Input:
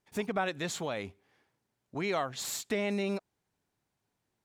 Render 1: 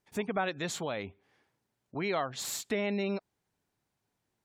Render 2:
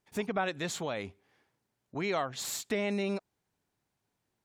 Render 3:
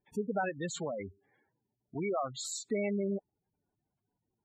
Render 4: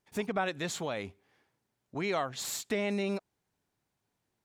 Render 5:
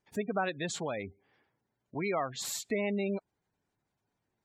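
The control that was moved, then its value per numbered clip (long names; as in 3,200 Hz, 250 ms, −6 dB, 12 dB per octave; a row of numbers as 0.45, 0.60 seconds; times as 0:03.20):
gate on every frequency bin, under each frame's peak: −35, −50, −10, −60, −20 decibels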